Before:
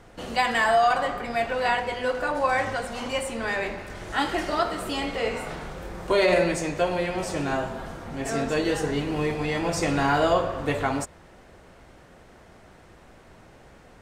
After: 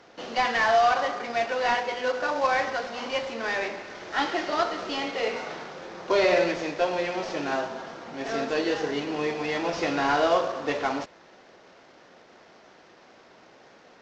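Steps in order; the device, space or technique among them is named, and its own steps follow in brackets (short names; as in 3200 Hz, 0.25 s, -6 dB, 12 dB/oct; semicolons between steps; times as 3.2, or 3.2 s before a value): early wireless headset (HPF 280 Hz 12 dB/oct; CVSD 32 kbps)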